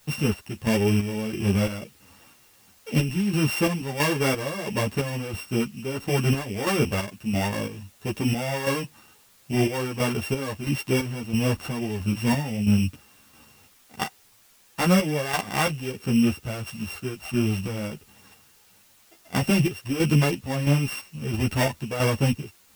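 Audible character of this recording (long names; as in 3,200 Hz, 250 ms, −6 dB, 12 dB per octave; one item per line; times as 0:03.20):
a buzz of ramps at a fixed pitch in blocks of 16 samples
chopped level 1.5 Hz, depth 60%, duty 50%
a quantiser's noise floor 10 bits, dither triangular
a shimmering, thickened sound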